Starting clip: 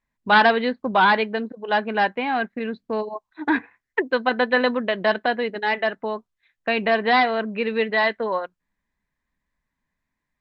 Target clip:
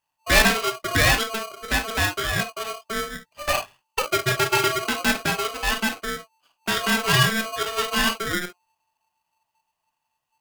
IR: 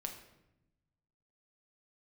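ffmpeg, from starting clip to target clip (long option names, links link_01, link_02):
-filter_complex "[0:a]highshelf=frequency=4500:gain=10[link_01];[1:a]atrim=start_sample=2205,atrim=end_sample=3087[link_02];[link_01][link_02]afir=irnorm=-1:irlink=0,aeval=exprs='val(0)*sgn(sin(2*PI*890*n/s))':channel_layout=same"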